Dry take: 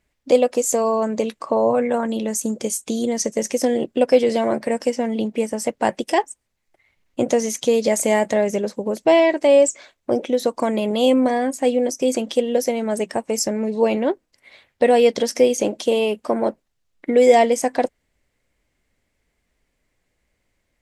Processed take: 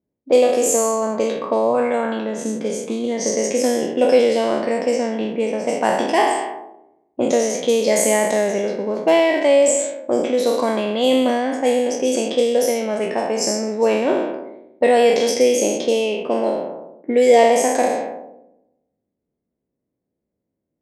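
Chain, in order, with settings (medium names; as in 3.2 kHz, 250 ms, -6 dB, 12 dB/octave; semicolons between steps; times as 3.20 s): spectral sustain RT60 1.17 s; high-pass 170 Hz 12 dB/octave; level-controlled noise filter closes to 380 Hz, open at -12.5 dBFS; 15.28–17.39 s: dynamic bell 1.2 kHz, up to -7 dB, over -38 dBFS, Q 2.2; trim -1 dB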